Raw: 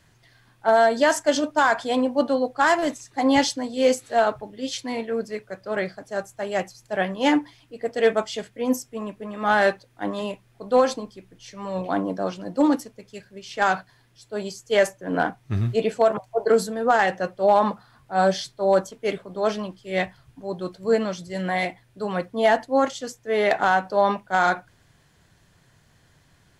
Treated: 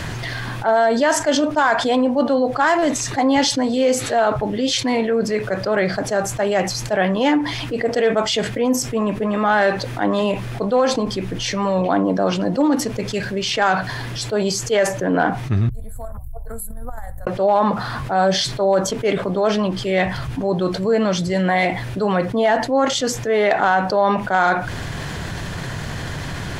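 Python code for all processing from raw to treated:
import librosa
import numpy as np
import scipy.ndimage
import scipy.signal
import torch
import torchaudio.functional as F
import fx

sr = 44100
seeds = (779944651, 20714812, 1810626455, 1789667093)

y = fx.chain(x, sr, fx.cheby2_bandstop(low_hz=160.0, high_hz=6000.0, order=4, stop_db=50),
    fx.high_shelf(hz=3800.0, db=-10.5),
    fx.pre_swell(db_per_s=70.0), at=(15.69, 17.27))
y = fx.high_shelf(y, sr, hz=6300.0, db=-10.0)
y = fx.env_flatten(y, sr, amount_pct=70)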